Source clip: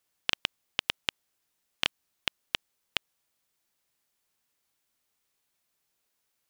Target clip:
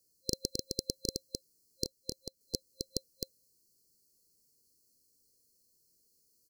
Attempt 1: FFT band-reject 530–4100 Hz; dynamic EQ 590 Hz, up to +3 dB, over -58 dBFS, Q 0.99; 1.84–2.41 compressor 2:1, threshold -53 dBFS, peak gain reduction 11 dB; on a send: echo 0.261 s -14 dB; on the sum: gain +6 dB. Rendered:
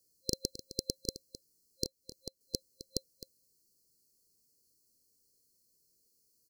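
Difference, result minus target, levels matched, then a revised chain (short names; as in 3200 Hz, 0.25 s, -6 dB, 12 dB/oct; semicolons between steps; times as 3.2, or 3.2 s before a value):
echo-to-direct -10.5 dB
FFT band-reject 530–4100 Hz; dynamic EQ 590 Hz, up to +3 dB, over -58 dBFS, Q 0.99; 1.84–2.41 compressor 2:1, threshold -53 dBFS, peak gain reduction 11 dB; on a send: echo 0.261 s -3.5 dB; on the sum: gain +6 dB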